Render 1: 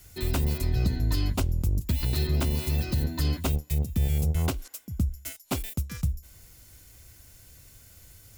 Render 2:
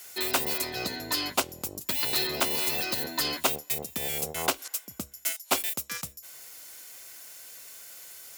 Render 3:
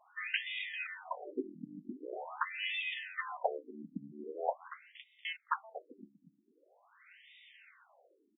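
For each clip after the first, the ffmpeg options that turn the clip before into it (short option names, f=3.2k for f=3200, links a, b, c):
-af "highpass=580,volume=8.5dB"
-af "bandreject=f=1.5k:w=21,aecho=1:1:236|472|708:0.2|0.0658|0.0217,afftfilt=real='re*between(b*sr/1024,220*pow(2700/220,0.5+0.5*sin(2*PI*0.44*pts/sr))/1.41,220*pow(2700/220,0.5+0.5*sin(2*PI*0.44*pts/sr))*1.41)':imag='im*between(b*sr/1024,220*pow(2700/220,0.5+0.5*sin(2*PI*0.44*pts/sr))/1.41,220*pow(2700/220,0.5+0.5*sin(2*PI*0.44*pts/sr))*1.41)':win_size=1024:overlap=0.75"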